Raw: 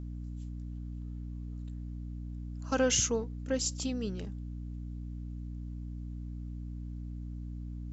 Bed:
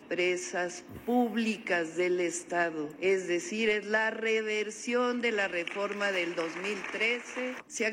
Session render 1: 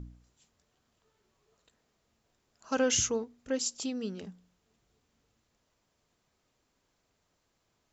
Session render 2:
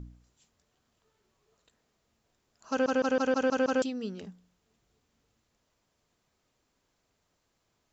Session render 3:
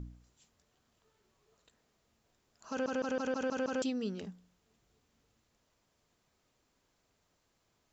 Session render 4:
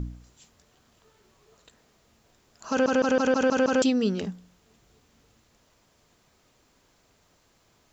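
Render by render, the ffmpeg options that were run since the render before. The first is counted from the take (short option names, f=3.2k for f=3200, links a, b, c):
-af "bandreject=f=60:t=h:w=4,bandreject=f=120:t=h:w=4,bandreject=f=180:t=h:w=4,bandreject=f=240:t=h:w=4,bandreject=f=300:t=h:w=4"
-filter_complex "[0:a]asplit=8[a][b][c][d][e][f][g][h];[a]atrim=end=2.862[i];[b]atrim=start=2.698:end=2.862[j];[c]atrim=start=2.698:end=2.862[k];[d]atrim=start=2.698:end=2.862[l];[e]atrim=start=2.698:end=2.862[m];[f]atrim=start=2.698:end=2.862[n];[g]atrim=start=2.698:end=2.862[o];[h]atrim=start=3.818[p];[i][j]acrossfade=d=0.004:c1=hsin:c2=hsin[q];[q][k]acrossfade=d=0.004:c1=hsin:c2=hsin[r];[r][l]acrossfade=d=0.004:c1=hsin:c2=hsin[s];[s][m]acrossfade=d=0.004:c1=hsin:c2=hsin[t];[t][n]acrossfade=d=0.004:c1=hsin:c2=hsin[u];[u][o]acrossfade=d=0.004:c1=hsin:c2=hsin[v];[v][p]acrossfade=d=0.004:c1=hsin:c2=hsin"
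-af "alimiter=level_in=3dB:limit=-24dB:level=0:latency=1:release=10,volume=-3dB"
-af "volume=12dB"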